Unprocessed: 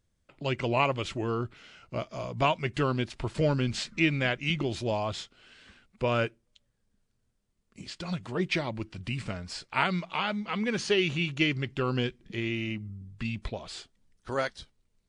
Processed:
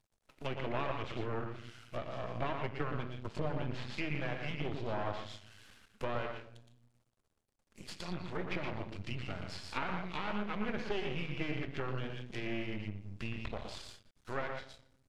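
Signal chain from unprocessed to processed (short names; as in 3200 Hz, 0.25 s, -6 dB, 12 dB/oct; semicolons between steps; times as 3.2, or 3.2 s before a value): CVSD 64 kbps; dynamic EQ 110 Hz, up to +6 dB, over -47 dBFS, Q 2.1; 2.76–3.3 gate -27 dBFS, range -21 dB; compressor, threshold -25 dBFS, peak gain reduction 6 dB; low shelf 440 Hz -3 dB; loudspeakers at several distances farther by 40 m -6 dB, 51 m -11 dB; on a send at -10 dB: reverb RT60 0.70 s, pre-delay 5 ms; on the sum: half-wave rectifier; treble ducked by the level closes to 2300 Hz, closed at -31 dBFS; gain -1.5 dB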